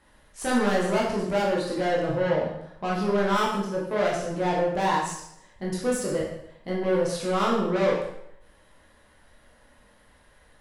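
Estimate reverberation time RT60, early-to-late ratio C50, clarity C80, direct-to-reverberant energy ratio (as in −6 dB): 0.75 s, 2.5 dB, 6.0 dB, −4.5 dB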